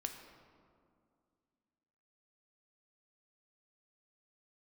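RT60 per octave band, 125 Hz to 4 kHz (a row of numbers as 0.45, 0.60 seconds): 2.5, 2.9, 2.4, 2.2, 1.5, 1.1 seconds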